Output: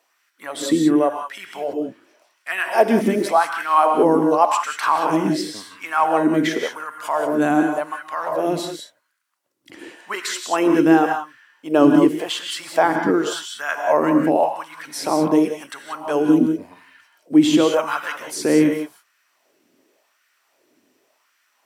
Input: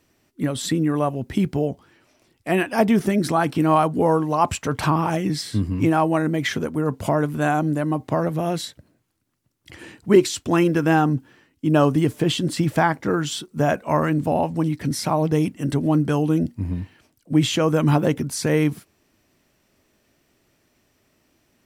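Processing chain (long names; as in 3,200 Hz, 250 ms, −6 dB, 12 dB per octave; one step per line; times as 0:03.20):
reverb whose tail is shaped and stops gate 210 ms rising, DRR 4 dB
auto-filter high-pass sine 0.9 Hz 260–1,500 Hz
level −1 dB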